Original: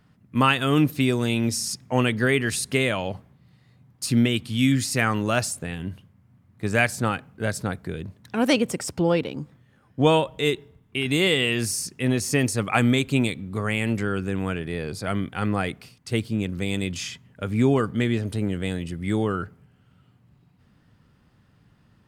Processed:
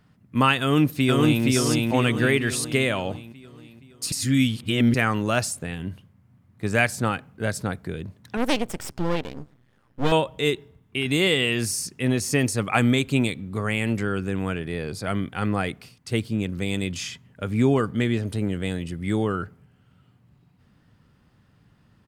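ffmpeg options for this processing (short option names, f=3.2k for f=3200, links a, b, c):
-filter_complex "[0:a]asplit=2[a][b];[b]afade=t=in:st=0.61:d=0.01,afade=t=out:st=1.44:d=0.01,aecho=0:1:470|940|1410|1880|2350|2820|3290:0.891251|0.445625|0.222813|0.111406|0.0557032|0.0278516|0.0139258[c];[a][c]amix=inputs=2:normalize=0,asettb=1/sr,asplit=3[d][e][f];[d]atrim=end=8.374[g];[e]atrim=start=8.37:end=10.12,asetpts=PTS-STARTPTS,afade=t=in:d=0.004:c=qsin,afade=t=out:st=1.746:d=0.004:c=qsin,aeval=exprs='max(val(0),0)':c=same[h];[f]atrim=start=10.116[i];[g][h]acrossfade=d=0.004:c1=hsin:c2=qsin[j];[j][i]acrossfade=d=0.004:c1=qsin:c2=hsin,asplit=3[k][l][m];[k]atrim=end=4.122[n];[l]atrim=start=4.118:end=4.942,asetpts=PTS-STARTPTS,areverse[o];[m]atrim=start=4.938[p];[n][o]acrossfade=d=0.004:c1=hsin:c2=hsin[q];[q][p]acrossfade=d=0.004:c1=hsin:c2=hsin"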